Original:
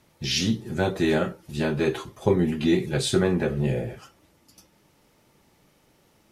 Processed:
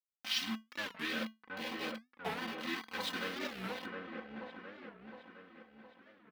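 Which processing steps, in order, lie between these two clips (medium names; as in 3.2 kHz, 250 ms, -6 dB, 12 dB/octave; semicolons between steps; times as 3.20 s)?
local Wiener filter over 15 samples; hum notches 60/120/180/240/300/360/420/480/540 Hz; Chebyshev shaper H 6 -32 dB, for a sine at -6.5 dBFS; small samples zeroed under -24.5 dBFS; distance through air 360 m; feedback comb 220 Hz, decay 0.2 s, harmonics odd, mix 70%; LFO notch saw up 0.45 Hz 350–2100 Hz; differentiator; comb 3.9 ms, depth 98%; feedback echo behind a low-pass 713 ms, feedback 52%, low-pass 1.6 kHz, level -3 dB; warped record 45 rpm, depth 250 cents; trim +15.5 dB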